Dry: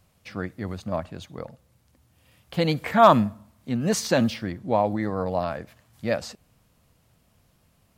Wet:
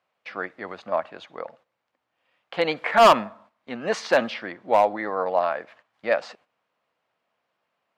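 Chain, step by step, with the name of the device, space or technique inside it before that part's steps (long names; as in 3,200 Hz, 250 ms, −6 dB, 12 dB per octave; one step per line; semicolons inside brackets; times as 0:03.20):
walkie-talkie (band-pass filter 600–2,500 Hz; hard clipping −16.5 dBFS, distortion −7 dB; noise gate −59 dBFS, range −11 dB)
level +7 dB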